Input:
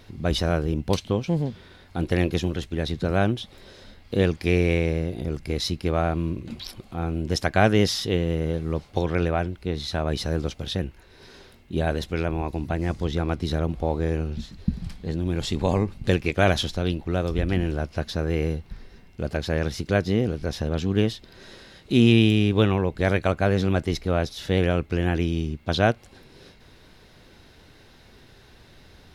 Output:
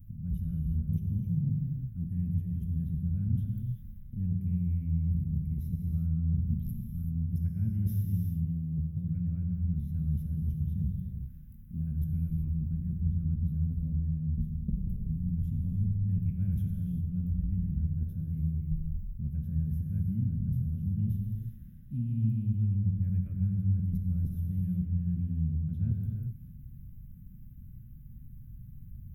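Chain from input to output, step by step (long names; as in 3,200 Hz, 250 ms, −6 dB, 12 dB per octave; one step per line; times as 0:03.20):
inverse Chebyshev band-stop filter 360–8,900 Hz, stop band 40 dB
reversed playback
downward compressor 6 to 1, threshold −35 dBFS, peak gain reduction 15.5 dB
reversed playback
reverb whose tail is shaped and stops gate 410 ms flat, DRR 1 dB
level +5.5 dB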